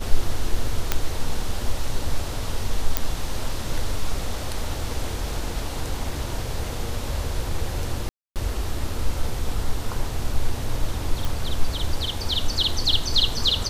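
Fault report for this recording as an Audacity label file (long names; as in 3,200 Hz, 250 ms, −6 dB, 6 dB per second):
0.920000	0.920000	click −4 dBFS
2.970000	2.970000	click −3 dBFS
8.090000	8.360000	drop-out 268 ms
11.250000	11.250000	click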